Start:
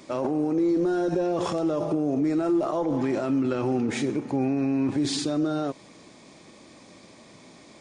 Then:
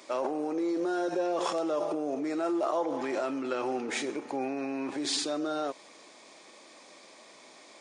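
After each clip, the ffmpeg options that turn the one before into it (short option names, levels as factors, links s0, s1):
-af "highpass=490"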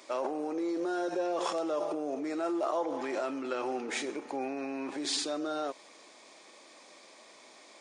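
-af "equalizer=f=70:w=0.56:g=-9,volume=0.841"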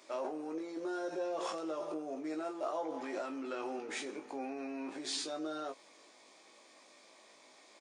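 -filter_complex "[0:a]asplit=2[s0][s1];[s1]adelay=19,volume=0.596[s2];[s0][s2]amix=inputs=2:normalize=0,volume=0.447"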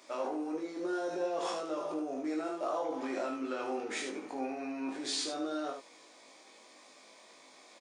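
-af "aecho=1:1:23|75:0.531|0.531,volume=1.19"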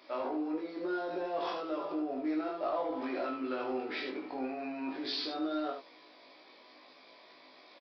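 -filter_complex "[0:a]asoftclip=type=tanh:threshold=0.0668,asplit=2[s0][s1];[s1]adelay=16,volume=0.473[s2];[s0][s2]amix=inputs=2:normalize=0,aresample=11025,aresample=44100"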